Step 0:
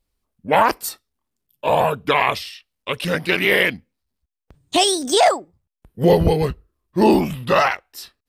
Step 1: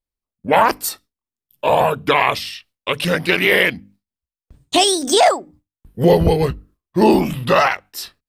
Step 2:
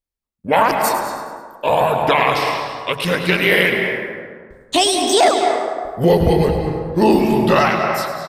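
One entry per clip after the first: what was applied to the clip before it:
notches 50/100/150/200/250/300 Hz; gate with hold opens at -49 dBFS; in parallel at +1 dB: compressor, threshold -26 dBFS, peak gain reduction 16 dB
feedback echo 0.105 s, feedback 48%, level -11 dB; on a send at -4 dB: reverb RT60 1.7 s, pre-delay 0.173 s; on the sum: gain -1 dB

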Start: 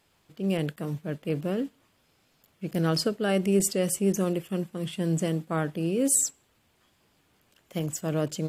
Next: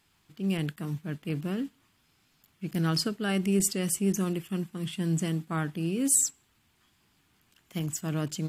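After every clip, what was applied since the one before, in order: bell 540 Hz -12.5 dB 0.77 oct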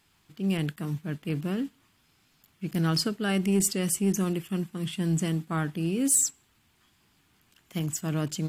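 soft clip -15.5 dBFS, distortion -25 dB; gain +2 dB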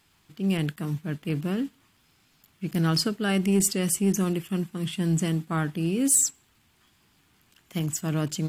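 crackle 61/s -56 dBFS; gain +2 dB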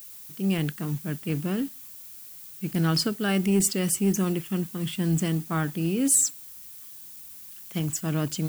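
added noise violet -44 dBFS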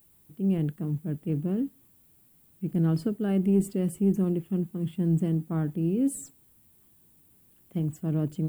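EQ curve 340 Hz 0 dB, 520 Hz -2 dB, 1300 Hz -14 dB, 3300 Hz -18 dB, 5900 Hz -27 dB, 8600 Hz -17 dB

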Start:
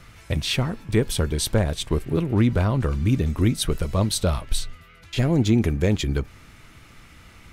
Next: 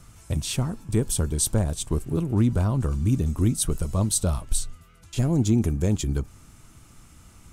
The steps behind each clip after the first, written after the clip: graphic EQ 500/2000/4000/8000 Hz -5/-11/-6/+8 dB; gain -1 dB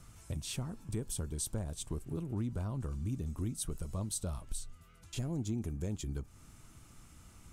compressor 2:1, threshold -34 dBFS, peak gain reduction 10 dB; gain -6 dB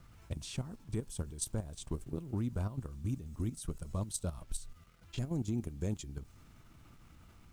low-pass opened by the level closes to 2700 Hz, open at -32 dBFS; level quantiser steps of 12 dB; requantised 12-bit, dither none; gain +3 dB

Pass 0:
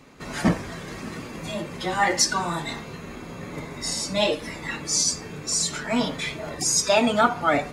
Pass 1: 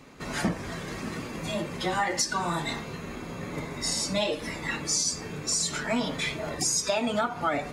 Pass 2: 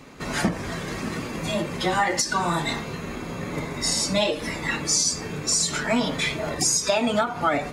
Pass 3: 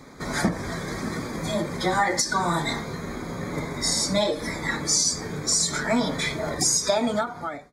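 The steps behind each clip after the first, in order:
compressor 10:1, threshold -23 dBFS, peak gain reduction 10.5 dB
ending taper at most 160 dB/s; gain +5 dB
ending faded out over 0.75 s; Butterworth band-stop 2800 Hz, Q 2.7

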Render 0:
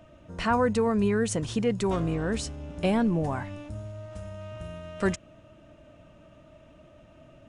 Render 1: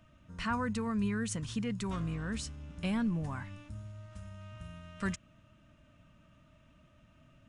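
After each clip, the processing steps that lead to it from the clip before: band shelf 510 Hz -10 dB; gain -6 dB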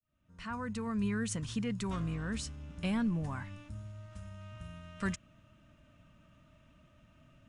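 opening faded in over 1.13 s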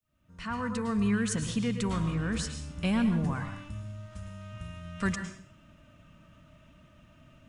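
plate-style reverb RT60 0.54 s, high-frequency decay 0.95×, pre-delay 95 ms, DRR 7 dB; gain +5 dB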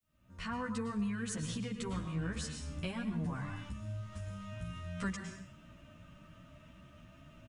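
compressor 2.5:1, threshold -39 dBFS, peak gain reduction 11 dB; endless flanger 11.4 ms +2.9 Hz; gain +3.5 dB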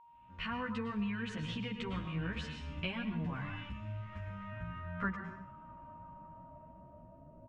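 whine 940 Hz -57 dBFS; low-pass sweep 2800 Hz -> 570 Hz, 3.55–7.33; gain -1 dB

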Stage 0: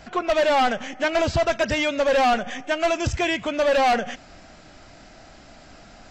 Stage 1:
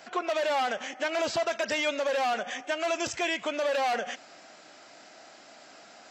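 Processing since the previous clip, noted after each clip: HPF 370 Hz 12 dB/oct; high shelf 7100 Hz +5 dB; limiter -17 dBFS, peak gain reduction 7 dB; gain -2.5 dB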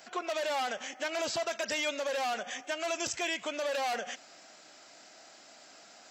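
high shelf 5000 Hz +10.5 dB; gain -5.5 dB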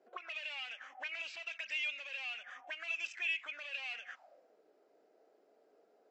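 auto-wah 360–2600 Hz, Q 7.9, up, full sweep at -30.5 dBFS; gain +4.5 dB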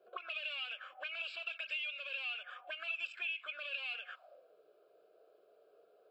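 compressor 6:1, threshold -39 dBFS, peak gain reduction 8 dB; fixed phaser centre 1300 Hz, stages 8; gain +4.5 dB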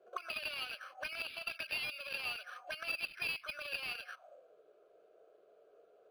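in parallel at -11 dB: bit-crush 6-bit; on the sum: decimation joined by straight lines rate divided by 6×; gain +2 dB

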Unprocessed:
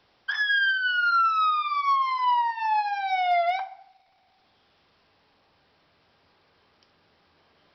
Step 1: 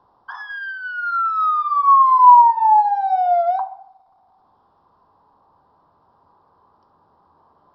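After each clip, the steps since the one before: EQ curve 630 Hz 0 dB, 1000 Hz +12 dB, 2300 Hz -27 dB, 3700 Hz -17 dB; gain +3.5 dB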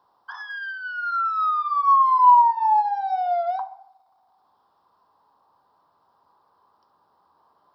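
tilt +3 dB/oct; gain -5 dB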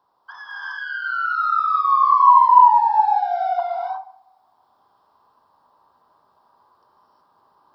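non-linear reverb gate 0.39 s rising, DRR -6 dB; gain -3 dB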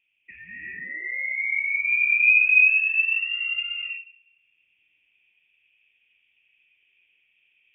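inverted band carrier 3500 Hz; gain -6 dB

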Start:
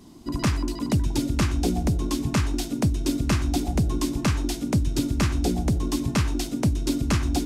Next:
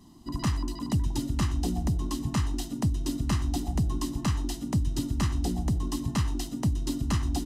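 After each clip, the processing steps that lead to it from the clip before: notch 2200 Hz, Q 6.7; comb 1 ms, depth 51%; gain -6.5 dB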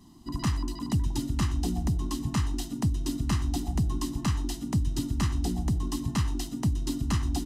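bell 540 Hz -7 dB 0.46 oct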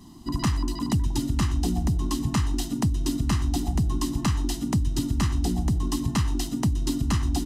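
compressor 2:1, threshold -29 dBFS, peak gain reduction 4.5 dB; gain +6.5 dB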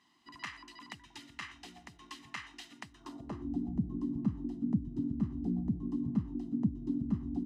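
band-pass sweep 2100 Hz -> 220 Hz, 2.88–3.55; gain -2.5 dB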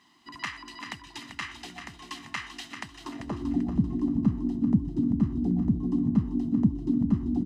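feedback echo 0.39 s, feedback 34%, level -8.5 dB; gain +8 dB

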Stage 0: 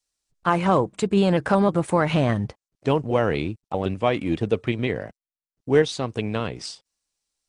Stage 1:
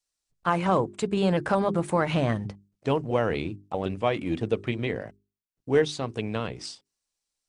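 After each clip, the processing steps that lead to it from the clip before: notches 50/100/150/200/250/300/350/400 Hz; gain -3.5 dB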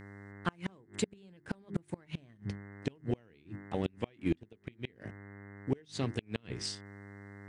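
buzz 100 Hz, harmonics 21, -48 dBFS -3 dB/oct; band shelf 820 Hz -9 dB; flipped gate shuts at -18 dBFS, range -32 dB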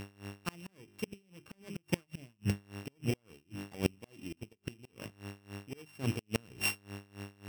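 sample sorter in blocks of 16 samples; dB-linear tremolo 3.6 Hz, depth 23 dB; gain +8 dB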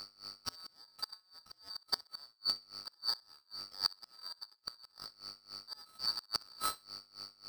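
four-band scrambler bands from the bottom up 2341; thinning echo 64 ms, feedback 23%, level -22 dB; gain -3 dB

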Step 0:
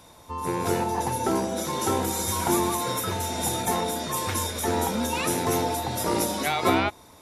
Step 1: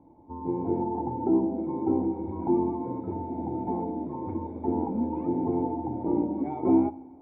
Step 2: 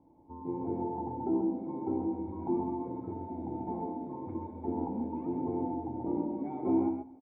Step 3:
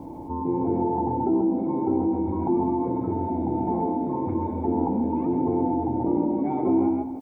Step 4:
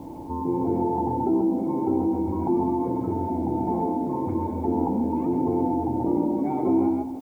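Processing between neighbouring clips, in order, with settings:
vocal tract filter u; two-slope reverb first 0.59 s, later 2.9 s, from -14 dB, DRR 15 dB; gain +8 dB
echo 0.133 s -6 dB; gain -7 dB
fast leveller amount 50%; gain +5.5 dB
requantised 10-bit, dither none

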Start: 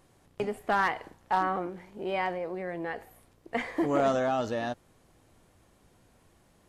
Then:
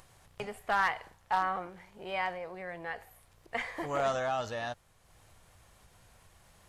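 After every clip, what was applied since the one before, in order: bell 290 Hz -14.5 dB 1.5 oct; upward compressor, threshold -52 dBFS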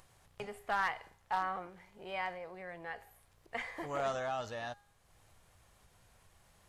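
resonator 410 Hz, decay 0.63 s, mix 50%; gain +1 dB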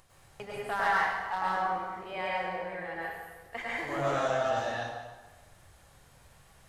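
plate-style reverb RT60 1.3 s, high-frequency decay 0.8×, pre-delay 90 ms, DRR -6.5 dB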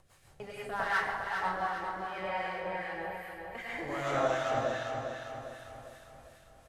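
rotary speaker horn 6 Hz, later 0.65 Hz, at 1.37; harmonic tremolo 2.6 Hz, depth 50%, crossover 1200 Hz; on a send: feedback echo 0.402 s, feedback 50%, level -6 dB; on the sum: gain +2 dB

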